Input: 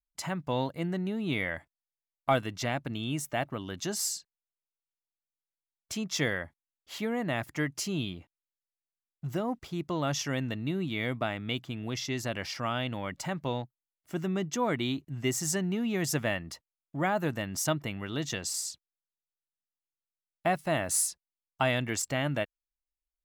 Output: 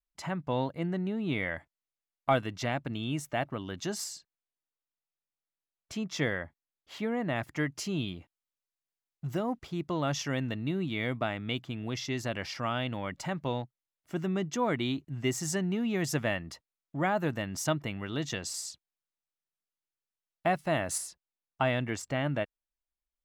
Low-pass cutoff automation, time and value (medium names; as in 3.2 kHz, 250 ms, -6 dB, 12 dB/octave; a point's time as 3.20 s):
low-pass 6 dB/octave
2.8 kHz
from 1.43 s 4.6 kHz
from 4.04 s 2.7 kHz
from 7.36 s 4.8 kHz
from 8.08 s 11 kHz
from 9.53 s 5.5 kHz
from 20.98 s 2.3 kHz